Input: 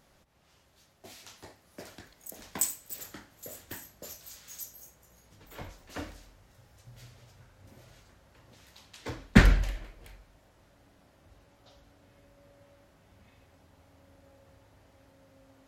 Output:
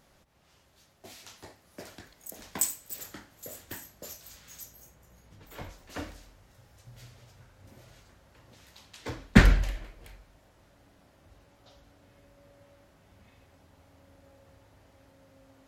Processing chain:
0:04.27–0:05.43: bass and treble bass +4 dB, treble −5 dB
level +1 dB

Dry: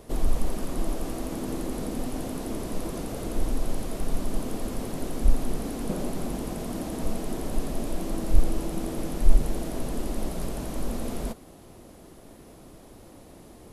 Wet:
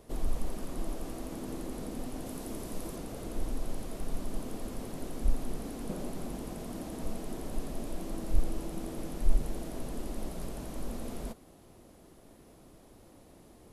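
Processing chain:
0:02.26–0:02.96: high-shelf EQ 5,800 Hz +5.5 dB
level −7.5 dB

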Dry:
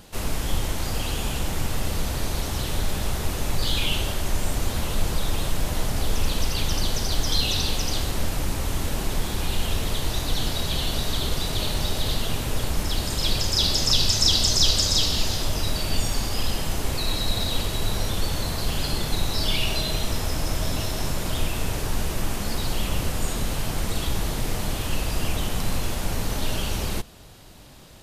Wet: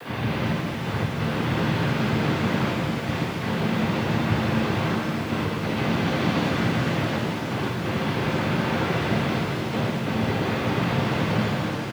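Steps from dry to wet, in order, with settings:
linear delta modulator 64 kbit/s, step −30.5 dBFS
Butterworth low-pass 1,500 Hz 36 dB per octave
change of speed 2.35×
gate pattern "xxx..x.xxxxxx" 88 BPM −12 dB
cochlear-implant simulation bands 16
bit reduction 9 bits
pitch-shifted copies added −7 semitones −11 dB, +5 semitones −9 dB
reverb with rising layers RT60 3.6 s, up +7 semitones, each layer −8 dB, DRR −3 dB

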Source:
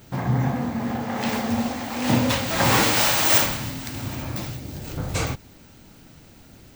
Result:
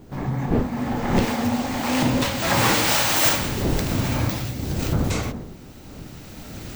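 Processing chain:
camcorder AGC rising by 13 dB per second
wind on the microphone 270 Hz −25 dBFS
source passing by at 0:03.01, 15 m/s, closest 20 metres

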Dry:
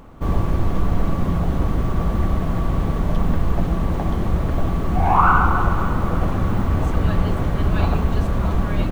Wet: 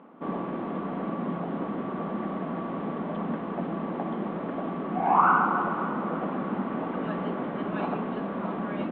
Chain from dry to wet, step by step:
elliptic band-pass filter 210–3,500 Hz, stop band 40 dB
high-frequency loss of the air 400 metres
level −2.5 dB

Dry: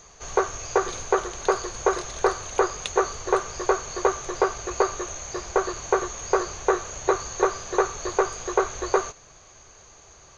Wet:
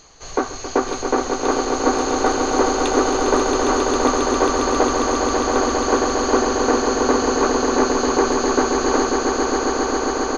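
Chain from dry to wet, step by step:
pitch-shifted copies added −7 semitones −4 dB, −5 semitones −13 dB
echo that builds up and dies away 135 ms, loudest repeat 8, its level −6.5 dB

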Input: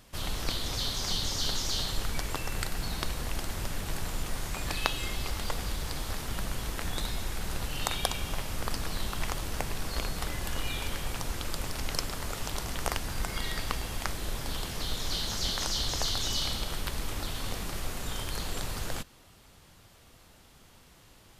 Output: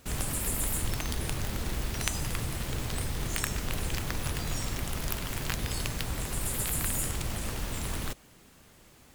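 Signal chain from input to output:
wrong playback speed 33 rpm record played at 78 rpm

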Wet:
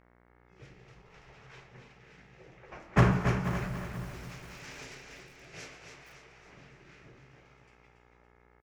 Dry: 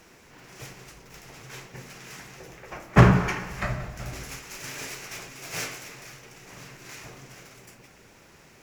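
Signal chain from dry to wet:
rotating-speaker cabinet horn 0.6 Hz
low-pass that shuts in the quiet parts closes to 2,300 Hz, open at −27.5 dBFS
noise reduction from a noise print of the clip's start 13 dB
hum with harmonics 60 Hz, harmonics 37, −56 dBFS −3 dB per octave
on a send: repeating echo 281 ms, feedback 46%, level −7 dB
on the sum: feedback echo at a low word length 484 ms, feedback 35%, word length 6 bits, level −12 dB
level −7.5 dB

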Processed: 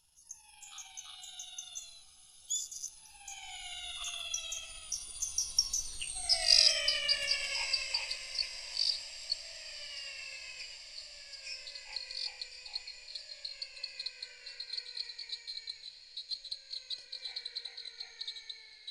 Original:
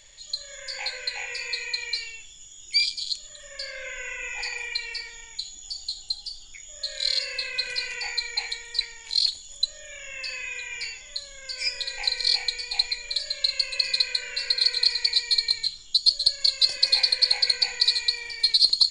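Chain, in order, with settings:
pitch glide at a constant tempo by +6 semitones ending unshifted
source passing by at 0:06.12, 30 m/s, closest 17 metres
feedback delay with all-pass diffusion 1,105 ms, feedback 65%, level −15 dB
level +5 dB

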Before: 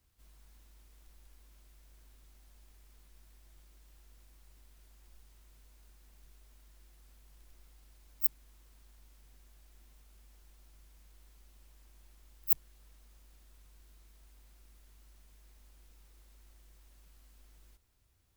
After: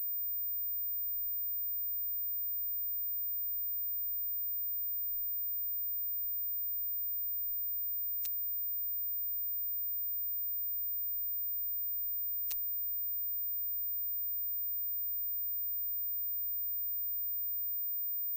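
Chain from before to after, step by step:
phaser with its sweep stopped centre 320 Hz, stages 4
switching amplifier with a slow clock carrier 15,000 Hz
level −5.5 dB

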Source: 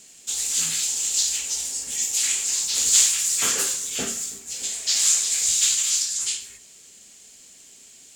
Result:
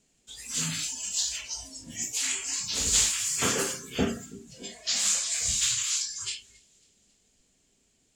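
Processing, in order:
spectral tilt −3 dB per octave
delay with a high-pass on its return 272 ms, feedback 55%, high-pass 2,200 Hz, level −13 dB
noise reduction from a noise print of the clip's start 16 dB
level +1.5 dB

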